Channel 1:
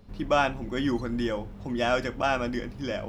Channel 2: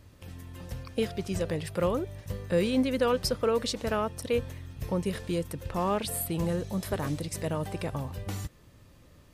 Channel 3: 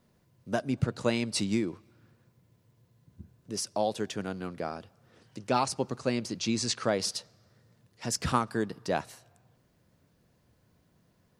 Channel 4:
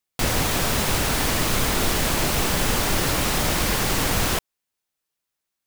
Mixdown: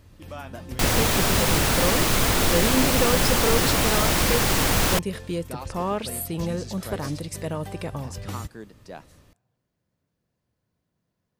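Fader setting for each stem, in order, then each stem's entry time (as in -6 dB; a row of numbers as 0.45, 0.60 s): -16.0, +1.5, -11.0, +1.0 dB; 0.00, 0.00, 0.00, 0.60 s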